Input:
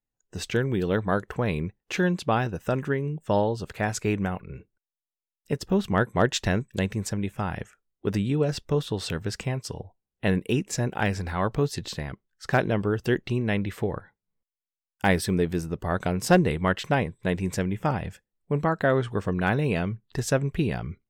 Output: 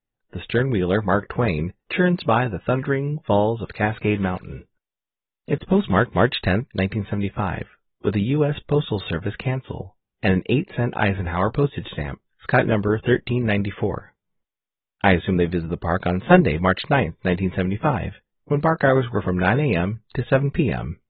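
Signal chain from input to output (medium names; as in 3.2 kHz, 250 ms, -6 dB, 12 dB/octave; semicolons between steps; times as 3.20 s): 3.81–6.25 s: block-companded coder 5-bit; trim +4.5 dB; AAC 16 kbps 32 kHz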